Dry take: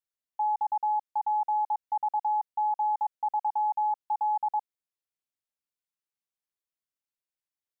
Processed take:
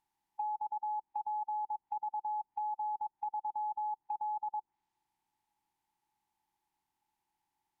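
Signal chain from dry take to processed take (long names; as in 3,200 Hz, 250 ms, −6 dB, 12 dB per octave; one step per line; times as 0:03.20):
compressor on every frequency bin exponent 0.6
treble cut that deepens with the level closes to 820 Hz, closed at −27 dBFS
drawn EQ curve 370 Hz 0 dB, 540 Hz −23 dB, 870 Hz −5 dB, 1,300 Hz −9 dB, 1,900 Hz 0 dB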